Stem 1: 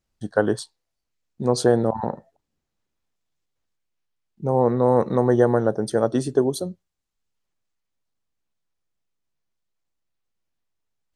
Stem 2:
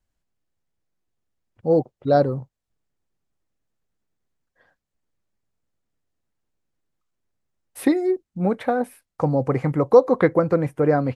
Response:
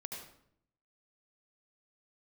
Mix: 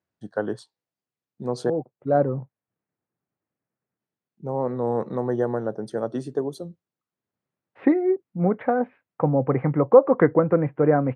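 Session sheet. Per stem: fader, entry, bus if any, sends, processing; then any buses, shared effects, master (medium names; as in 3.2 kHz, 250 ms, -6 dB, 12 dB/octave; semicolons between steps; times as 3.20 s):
-6.5 dB, 0.00 s, muted 1.70–4.00 s, no send, none
0.0 dB, 0.00 s, no send, low-pass 2.4 kHz 24 dB/octave; auto duck -9 dB, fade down 0.50 s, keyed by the first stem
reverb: none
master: high-pass 110 Hz 24 dB/octave; treble shelf 4.5 kHz -11 dB; warped record 33 1/3 rpm, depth 100 cents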